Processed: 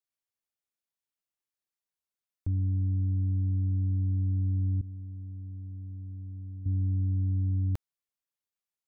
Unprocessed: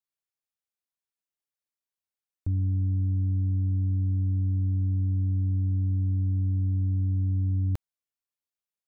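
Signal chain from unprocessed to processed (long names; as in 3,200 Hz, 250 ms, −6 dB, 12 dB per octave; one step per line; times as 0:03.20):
0:04.81–0:06.66: downward expander −17 dBFS
level −2 dB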